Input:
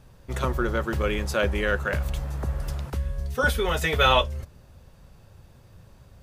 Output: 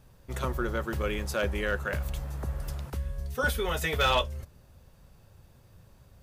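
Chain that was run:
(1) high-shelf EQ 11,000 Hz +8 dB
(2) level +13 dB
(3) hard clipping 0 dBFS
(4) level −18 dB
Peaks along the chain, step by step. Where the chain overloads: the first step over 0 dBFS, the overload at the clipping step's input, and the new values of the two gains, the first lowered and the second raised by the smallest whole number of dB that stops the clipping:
−6.0, +7.0, 0.0, −18.0 dBFS
step 2, 7.0 dB
step 2 +6 dB, step 4 −11 dB

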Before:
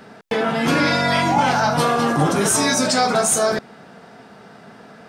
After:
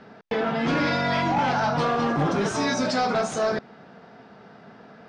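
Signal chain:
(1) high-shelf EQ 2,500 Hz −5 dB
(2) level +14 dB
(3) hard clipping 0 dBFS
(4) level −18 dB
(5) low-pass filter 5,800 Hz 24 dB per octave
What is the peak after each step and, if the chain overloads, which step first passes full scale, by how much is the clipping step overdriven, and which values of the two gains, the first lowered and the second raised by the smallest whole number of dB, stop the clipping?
−7.0, +7.0, 0.0, −18.0, −17.0 dBFS
step 2, 7.0 dB
step 2 +7 dB, step 4 −11 dB

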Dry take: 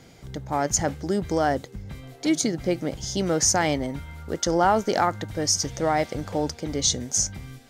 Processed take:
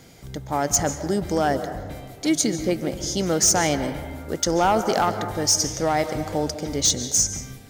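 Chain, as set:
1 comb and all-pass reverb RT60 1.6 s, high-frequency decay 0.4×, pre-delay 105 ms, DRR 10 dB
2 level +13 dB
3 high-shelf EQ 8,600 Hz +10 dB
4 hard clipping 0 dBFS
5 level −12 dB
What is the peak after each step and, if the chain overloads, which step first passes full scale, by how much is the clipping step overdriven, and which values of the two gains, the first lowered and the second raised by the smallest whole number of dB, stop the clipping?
−6.5, +6.5, +8.0, 0.0, −12.0 dBFS
step 2, 8.0 dB
step 2 +5 dB, step 5 −4 dB

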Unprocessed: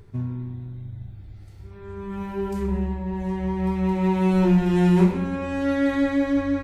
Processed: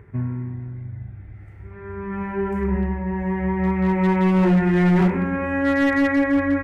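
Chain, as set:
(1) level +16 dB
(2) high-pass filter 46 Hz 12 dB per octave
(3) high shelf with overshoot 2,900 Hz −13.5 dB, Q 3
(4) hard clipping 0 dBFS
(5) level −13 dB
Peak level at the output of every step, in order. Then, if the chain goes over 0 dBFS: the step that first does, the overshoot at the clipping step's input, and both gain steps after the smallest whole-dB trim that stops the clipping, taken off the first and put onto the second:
+9.0, +8.5, +9.0, 0.0, −13.0 dBFS
step 1, 9.0 dB
step 1 +7 dB, step 5 −4 dB

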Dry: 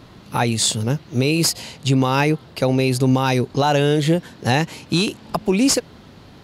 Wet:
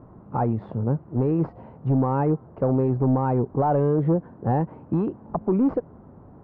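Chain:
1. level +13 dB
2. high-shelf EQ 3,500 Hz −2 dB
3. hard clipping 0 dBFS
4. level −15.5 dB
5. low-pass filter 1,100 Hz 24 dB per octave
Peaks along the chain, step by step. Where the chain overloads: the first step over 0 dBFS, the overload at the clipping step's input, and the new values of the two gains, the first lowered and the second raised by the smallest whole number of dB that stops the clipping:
+5.5, +5.5, 0.0, −15.5, −14.0 dBFS
step 1, 5.5 dB
step 1 +7 dB, step 4 −9.5 dB

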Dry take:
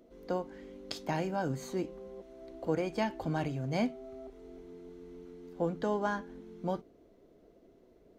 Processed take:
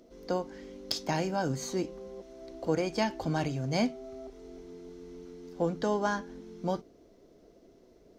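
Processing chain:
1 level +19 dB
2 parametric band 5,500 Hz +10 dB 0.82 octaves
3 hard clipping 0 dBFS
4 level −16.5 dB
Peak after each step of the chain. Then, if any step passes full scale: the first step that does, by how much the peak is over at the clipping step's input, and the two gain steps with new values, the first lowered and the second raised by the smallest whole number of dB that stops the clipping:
+0.5, +7.0, 0.0, −16.5 dBFS
step 1, 7.0 dB
step 1 +12 dB, step 4 −9.5 dB

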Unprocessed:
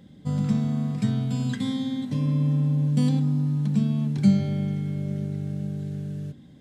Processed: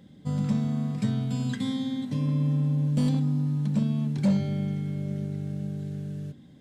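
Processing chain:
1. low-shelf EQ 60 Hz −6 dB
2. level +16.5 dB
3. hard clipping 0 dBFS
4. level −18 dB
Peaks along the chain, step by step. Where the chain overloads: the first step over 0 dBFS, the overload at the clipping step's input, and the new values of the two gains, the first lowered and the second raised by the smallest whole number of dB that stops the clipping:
−8.5, +8.0, 0.0, −18.0 dBFS
step 2, 8.0 dB
step 2 +8.5 dB, step 4 −10 dB

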